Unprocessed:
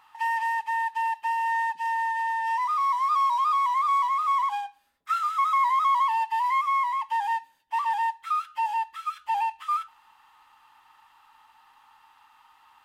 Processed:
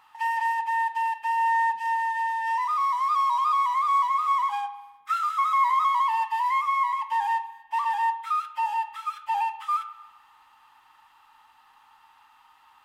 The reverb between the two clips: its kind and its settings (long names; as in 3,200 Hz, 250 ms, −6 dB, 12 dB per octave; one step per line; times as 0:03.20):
spring reverb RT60 1.1 s, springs 39/50 ms, chirp 25 ms, DRR 11.5 dB